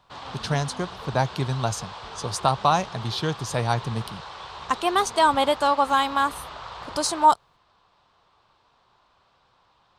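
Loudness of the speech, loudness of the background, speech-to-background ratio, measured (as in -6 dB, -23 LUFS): -24.0 LUFS, -38.0 LUFS, 14.0 dB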